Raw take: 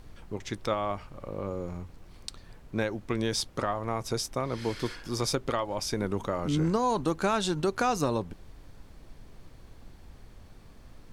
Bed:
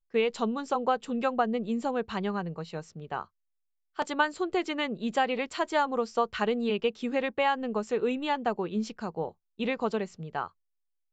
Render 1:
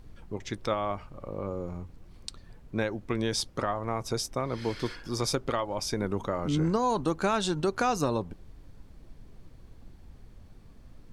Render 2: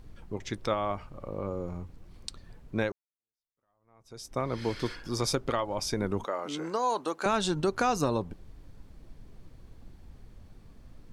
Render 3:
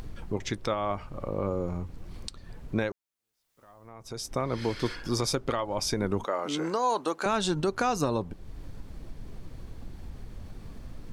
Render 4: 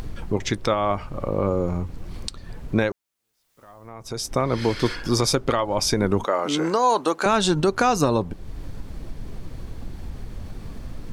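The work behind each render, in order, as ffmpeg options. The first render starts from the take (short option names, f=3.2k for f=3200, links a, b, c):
-af "afftdn=nr=6:nf=-52"
-filter_complex "[0:a]asettb=1/sr,asplit=3[a][b][c];[a]atrim=end=6.244[d];[b]atrim=start=6.24:end=7.26,asetpts=PTS-STARTPTS,afade=t=in:d=0.004:c=qsin,afade=t=out:st=1.016:d=0.004:c=qsin,highpass=450[e];[c]atrim=start=7.256[f];[d][e]acrossfade=d=0.004:c1=hsin:c2=qsin[g];[g][f]acrossfade=d=0.004:c1=qsin:c2=hsin,asplit=2[h][i];[h]atrim=end=2.92,asetpts=PTS-STARTPTS,afade=t=out:st=2.916:d=0.004:c=hsin[j];[i]atrim=start=2.92,asetpts=PTS-STARTPTS,afade=t=in:d=1.46:c=exp[k];[j][k]concat=n=2:v=0:a=1"
-filter_complex "[0:a]asplit=2[a][b];[b]acompressor=mode=upward:threshold=-31dB:ratio=2.5,volume=-3dB[c];[a][c]amix=inputs=2:normalize=0,alimiter=limit=-16.5dB:level=0:latency=1:release=455"
-af "volume=7.5dB"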